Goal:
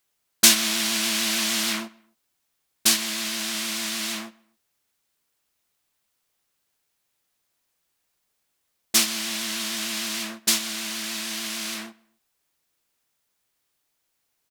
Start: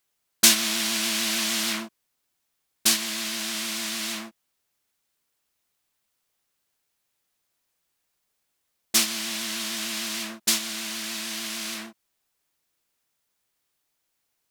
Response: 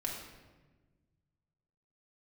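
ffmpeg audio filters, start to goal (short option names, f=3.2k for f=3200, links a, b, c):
-filter_complex "[0:a]asplit=2[a][b];[b]adelay=131,lowpass=f=2.5k:p=1,volume=-22dB,asplit=2[c][d];[d]adelay=131,lowpass=f=2.5k:p=1,volume=0.35[e];[a][c][e]amix=inputs=3:normalize=0,volume=1.5dB"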